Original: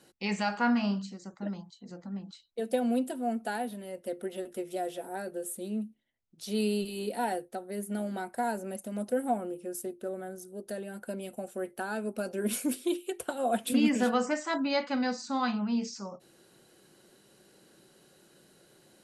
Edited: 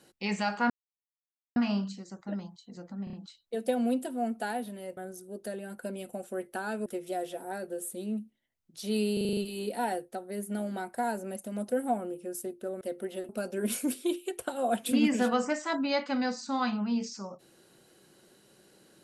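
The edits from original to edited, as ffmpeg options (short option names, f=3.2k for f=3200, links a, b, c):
-filter_complex "[0:a]asplit=15[a][b][c][d][e][f][g][h][i][j][k][l][m][n][o];[a]atrim=end=0.7,asetpts=PTS-STARTPTS,afade=t=out:st=0.696:d=0.004:c=hsin,apad=pad_dur=0.86[p];[b]atrim=start=0.7:end=2.212,asetpts=PTS-STARTPTS,afade=t=in:d=0.004:c=hsin[q];[c]atrim=start=2.178:end=2.212[r];[d]atrim=start=2.178:end=2.212[s];[e]atrim=start=2.178:end=4.022[t];[f]atrim=start=10.208:end=12.102[u];[g]atrim=start=4.498:end=6.812[v];[h]atrim=start=6.768:end=6.812[w];[i]atrim=start=6.768:end=6.812[x];[j]atrim=start=6.768:end=6.812[y];[k]atrim=start=6.768:end=6.812[z];[l]atrim=start=6.768:end=6.812[aa];[m]atrim=start=6.768:end=10.212[ab];[n]atrim=start=4.018:end=4.502[ac];[o]atrim=start=12.098[ad];[p][q]concat=n=2:v=0:a=1[ae];[ae][r]acrossfade=d=0.004:c1=hsin:c2=hsin[af];[af][s]acrossfade=d=0.004:c1=hsin:c2=hsin[ag];[ag][t]acrossfade=d=0.004:c1=hsin:c2=hsin[ah];[ah][u]acrossfade=d=0.004:c1=hsin:c2=hsin[ai];[ai][v]acrossfade=d=0.004:c1=hsin:c2=hsin[aj];[aj][w]acrossfade=d=0.004:c1=hsin:c2=hsin[ak];[ak][x]acrossfade=d=0.004:c1=hsin:c2=hsin[al];[al][y]acrossfade=d=0.004:c1=hsin:c2=hsin[am];[am][z]acrossfade=d=0.004:c1=hsin:c2=hsin[an];[an][aa]acrossfade=d=0.004:c1=hsin:c2=hsin[ao];[ao][ab]acrossfade=d=0.004:c1=hsin:c2=hsin[ap];[ap][ac]acrossfade=d=0.004:c1=hsin:c2=hsin[aq];[aq][ad]acrossfade=d=0.004:c1=hsin:c2=hsin"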